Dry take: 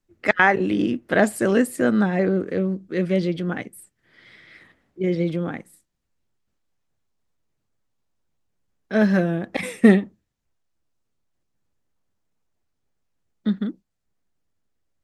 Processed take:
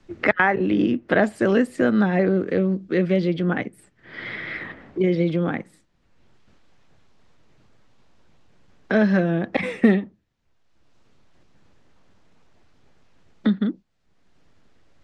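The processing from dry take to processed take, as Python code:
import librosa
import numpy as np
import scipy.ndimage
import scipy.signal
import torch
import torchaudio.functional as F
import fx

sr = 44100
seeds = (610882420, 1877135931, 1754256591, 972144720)

y = scipy.signal.sosfilt(scipy.signal.butter(2, 4400.0, 'lowpass', fs=sr, output='sos'), x)
y = fx.band_squash(y, sr, depth_pct=70)
y = y * librosa.db_to_amplitude(1.0)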